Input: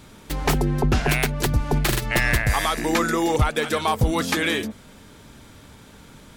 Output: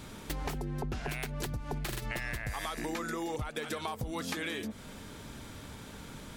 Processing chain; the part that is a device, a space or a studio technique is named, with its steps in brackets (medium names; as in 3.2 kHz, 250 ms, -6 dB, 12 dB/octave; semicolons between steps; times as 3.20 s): serial compression, peaks first (compression, threshold -28 dBFS, peak gain reduction 13.5 dB; compression 2:1, threshold -37 dBFS, peak gain reduction 7 dB)